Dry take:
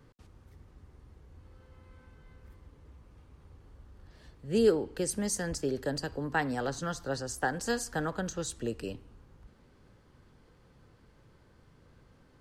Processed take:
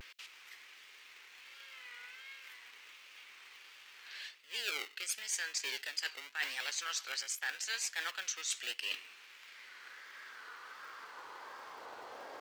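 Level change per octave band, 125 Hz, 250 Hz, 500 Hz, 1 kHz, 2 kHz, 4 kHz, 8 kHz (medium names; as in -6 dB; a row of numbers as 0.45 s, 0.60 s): under -35 dB, -31.0 dB, -23.0 dB, -9.5 dB, +0.5 dB, +5.5 dB, +0.5 dB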